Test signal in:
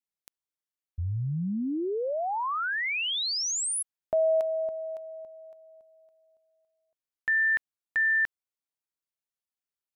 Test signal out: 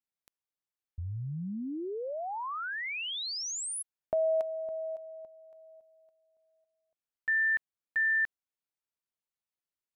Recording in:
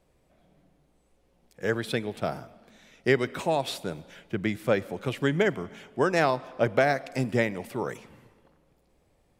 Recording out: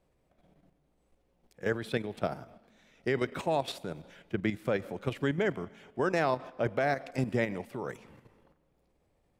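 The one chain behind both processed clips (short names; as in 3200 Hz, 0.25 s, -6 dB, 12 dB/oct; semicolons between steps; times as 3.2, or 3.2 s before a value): high shelf 3600 Hz -5 dB; level quantiser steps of 9 dB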